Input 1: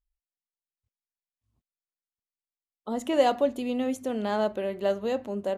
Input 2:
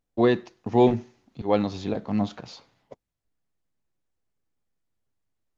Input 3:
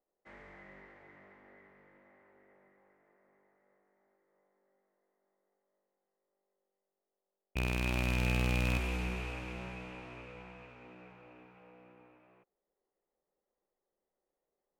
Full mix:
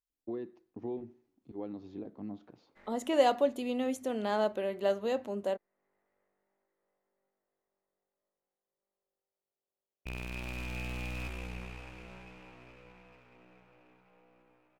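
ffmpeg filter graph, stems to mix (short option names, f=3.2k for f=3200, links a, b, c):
-filter_complex "[0:a]highpass=f=220:p=1,volume=-2.5dB,asplit=2[a][b];[1:a]lowpass=f=2k:p=1,equalizer=f=320:t=o:w=0.92:g=12.5,acompressor=threshold=-18dB:ratio=3,adelay=100,volume=-19.5dB[c];[2:a]aeval=exprs='if(lt(val(0),0),0.447*val(0),val(0))':c=same,adelay=2500,volume=-4dB[d];[b]apad=whole_len=762691[e];[d][e]sidechaincompress=threshold=-39dB:ratio=8:attack=41:release=610[f];[a][c][f]amix=inputs=3:normalize=0"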